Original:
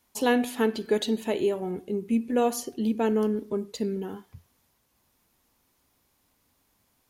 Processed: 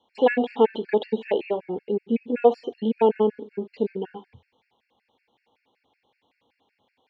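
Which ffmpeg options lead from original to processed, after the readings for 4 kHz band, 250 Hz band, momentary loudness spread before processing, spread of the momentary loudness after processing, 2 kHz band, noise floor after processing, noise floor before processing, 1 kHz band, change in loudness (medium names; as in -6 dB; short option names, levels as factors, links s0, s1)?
-3.5 dB, -0.5 dB, 8 LU, 9 LU, +0.5 dB, -76 dBFS, -71 dBFS, +4.5 dB, +3.0 dB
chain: -filter_complex "[0:a]highpass=140,equalizer=f=160:t=q:w=4:g=-7,equalizer=f=480:t=q:w=4:g=9,equalizer=f=830:t=q:w=4:g=10,equalizer=f=1300:t=q:w=4:g=-8,equalizer=f=2300:t=q:w=4:g=6,equalizer=f=3300:t=q:w=4:g=7,lowpass=f=3800:w=0.5412,lowpass=f=3800:w=1.3066,acrossover=split=2900[s0][s1];[s1]acompressor=threshold=0.00251:ratio=4:attack=1:release=60[s2];[s0][s2]amix=inputs=2:normalize=0,afftfilt=real='re*gt(sin(2*PI*5.3*pts/sr)*(1-2*mod(floor(b*sr/1024/1400),2)),0)':imag='im*gt(sin(2*PI*5.3*pts/sr)*(1-2*mod(floor(b*sr/1024/1400),2)),0)':win_size=1024:overlap=0.75,volume=1.41"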